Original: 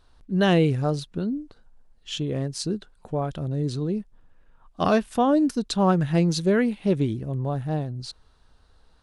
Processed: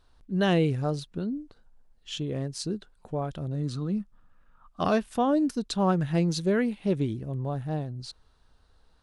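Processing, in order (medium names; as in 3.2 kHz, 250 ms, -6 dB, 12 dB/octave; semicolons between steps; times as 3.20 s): 3.55–4.81 s: graphic EQ with 31 bands 200 Hz +5 dB, 400 Hz -10 dB, 1.25 kHz +12 dB; trim -4 dB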